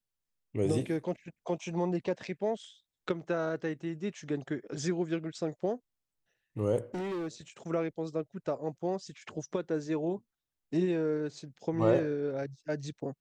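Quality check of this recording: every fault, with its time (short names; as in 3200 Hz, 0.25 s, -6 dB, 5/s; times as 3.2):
6.94–7.28 clipped -32.5 dBFS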